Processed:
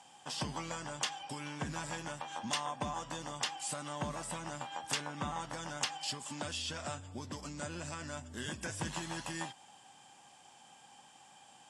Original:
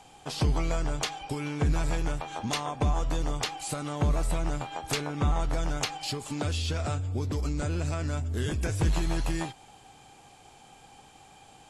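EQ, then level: cabinet simulation 290–9200 Hz, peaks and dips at 300 Hz -6 dB, 760 Hz -5 dB, 1.3 kHz -7 dB, 2.3 kHz -9 dB, 4.1 kHz -9 dB, 6.5 kHz -4 dB; peaking EQ 430 Hz -15 dB 0.59 oct; band-stop 660 Hz, Q 21; +1.0 dB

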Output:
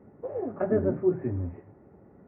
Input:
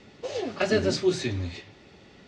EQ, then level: Gaussian low-pass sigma 7.4 samples; high-pass 53 Hz; 0.0 dB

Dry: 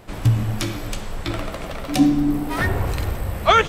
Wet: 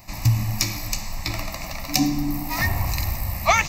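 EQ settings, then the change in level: treble shelf 2.5 kHz +8 dB; treble shelf 6.4 kHz +11 dB; static phaser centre 2.2 kHz, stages 8; -1.0 dB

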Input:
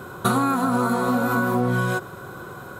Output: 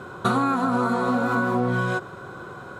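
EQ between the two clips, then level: distance through air 76 m; bass shelf 200 Hz -3.5 dB; 0.0 dB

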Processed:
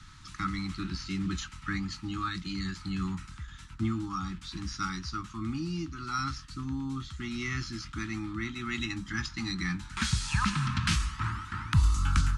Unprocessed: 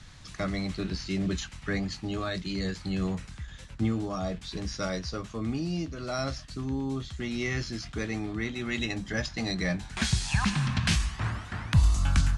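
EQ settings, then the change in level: elliptic band-stop 340–880 Hz, stop band 40 dB; peaking EQ 1.3 kHz +13 dB 0.22 oct; -2.0 dB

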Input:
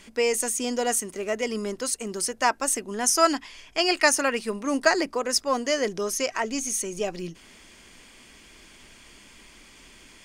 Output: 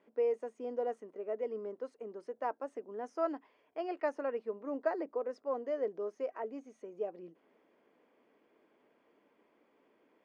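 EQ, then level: ladder band-pass 440 Hz, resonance 65%; peaking EQ 380 Hz -15 dB 0.33 oct; +2.5 dB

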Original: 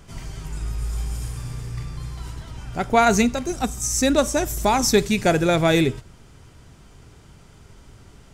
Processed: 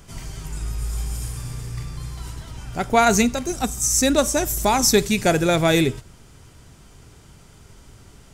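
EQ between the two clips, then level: treble shelf 6.1 kHz +7.5 dB; 0.0 dB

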